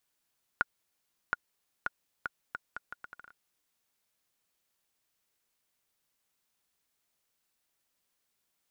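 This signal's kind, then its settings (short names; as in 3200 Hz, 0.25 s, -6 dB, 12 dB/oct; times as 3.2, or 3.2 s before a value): bouncing ball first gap 0.72 s, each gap 0.74, 1440 Hz, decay 25 ms -12.5 dBFS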